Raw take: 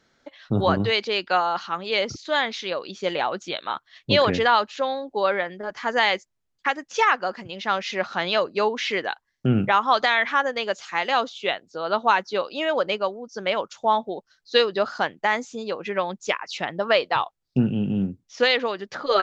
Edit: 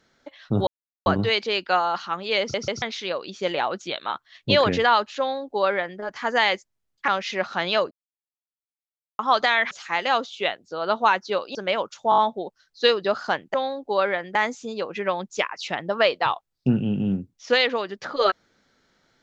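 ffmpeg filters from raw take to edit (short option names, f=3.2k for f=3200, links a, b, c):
-filter_complex "[0:a]asplit=16[a][b][c][d][e][f][g][h][i][j][k][l][m][n][o][p];[a]atrim=end=0.67,asetpts=PTS-STARTPTS,afade=t=out:st=0.666:d=0.004:c=hsin,apad=pad_dur=0.39[q];[b]atrim=start=0.67:end=2.152,asetpts=PTS-STARTPTS,afade=t=in:d=0.004:c=hsin[r];[c]atrim=start=2.008:end=2.152[s];[d]atrim=start=2.008:end=2.152[t];[e]atrim=start=2.428:end=6.692[u];[f]atrim=start=7.678:end=8.51,asetpts=PTS-STARTPTS,afade=t=out:st=0.828:d=0.004:c=hsin[v];[g]atrim=start=8.51:end=9.79,asetpts=PTS-STARTPTS,volume=0[w];[h]atrim=start=9.79:end=10.312,asetpts=PTS-STARTPTS,afade=t=in:d=0.004:c=hsin[x];[i]atrim=start=10.738:end=12.582[y];[j]atrim=start=13.338:end=13.912[z];[k]atrim=start=13.888:end=13.912[aa];[l]atrim=start=13.888:end=13.912[ab];[m]atrim=start=13.888:end=13.912[ac];[n]atrim=start=13.888:end=15.252[ad];[o]atrim=start=4.798:end=5.612[ae];[p]atrim=start=15.248[af];[q][r]concat=n=2:v=0:a=1[ag];[ag][s]acrossfade=d=0.004:c1=hsin:c2=hsin[ah];[ah][t]acrossfade=d=0.004:c1=hsin:c2=hsin[ai];[ai][u]acrossfade=d=0.004:c1=hsin:c2=hsin[aj];[v][w][x]concat=n=3:v=0:a=1[ak];[aj][ak]acrossfade=d=0.004:c1=hsin:c2=hsin[al];[al][y]acrossfade=d=0.004:c1=hsin:c2=hsin[am];[am][z]acrossfade=d=0.004:c1=hsin:c2=hsin[an];[an][aa]acrossfade=d=0.004:c1=hsin:c2=hsin[ao];[ao][ab]acrossfade=d=0.004:c1=hsin:c2=hsin[ap];[ap][ac]acrossfade=d=0.004:c1=hsin:c2=hsin[aq];[aq][ad]acrossfade=d=0.004:c1=hsin:c2=hsin[ar];[ar][ae]acrossfade=d=0.004:c1=hsin:c2=hsin[as];[as][af]acrossfade=d=0.004:c1=hsin:c2=hsin"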